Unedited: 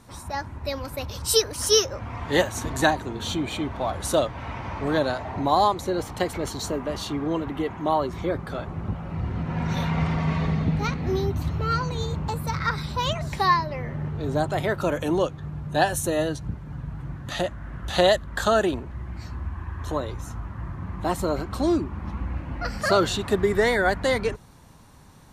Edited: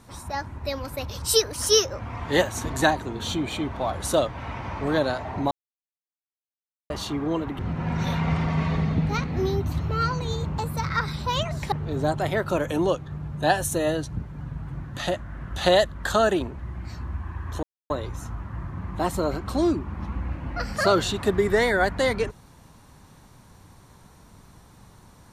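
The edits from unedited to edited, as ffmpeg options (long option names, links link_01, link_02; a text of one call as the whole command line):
ffmpeg -i in.wav -filter_complex "[0:a]asplit=6[link_01][link_02][link_03][link_04][link_05][link_06];[link_01]atrim=end=5.51,asetpts=PTS-STARTPTS,afade=type=out:start_time=5.506:duration=0.004:curve=hsin[link_07];[link_02]atrim=start=5.51:end=6.9,asetpts=PTS-STARTPTS,volume=0[link_08];[link_03]atrim=start=6.9:end=7.592,asetpts=PTS-STARTPTS,afade=type=in:duration=0.004:curve=hsin[link_09];[link_04]atrim=start=9.288:end=13.422[link_10];[link_05]atrim=start=14.038:end=19.95,asetpts=PTS-STARTPTS,afade=type=out:start_time=5.908:duration=0.004:curve=hsin,apad=pad_dur=0.27[link_11];[link_06]atrim=start=19.95,asetpts=PTS-STARTPTS,afade=type=in:duration=0.004:curve=hsin[link_12];[link_07][link_08][link_09]concat=n=3:v=0:a=1[link_13];[link_13][link_10]acrossfade=duration=0.004:curve1=hsin:curve2=hsin[link_14];[link_11][link_12]concat=n=2:v=0:a=1[link_15];[link_14][link_15]acrossfade=duration=0.004:curve1=hsin:curve2=hsin" out.wav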